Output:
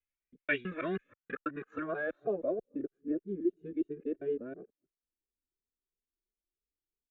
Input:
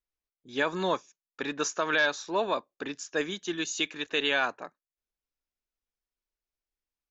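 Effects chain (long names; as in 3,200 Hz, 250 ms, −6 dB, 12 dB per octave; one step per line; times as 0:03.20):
reversed piece by piece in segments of 162 ms
high-shelf EQ 4,000 Hz −7 dB
phaser with its sweep stopped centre 2,200 Hz, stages 4
low-pass filter sweep 2,400 Hz → 390 Hz, 0:00.60–0:03.03
barber-pole flanger 2 ms +3 Hz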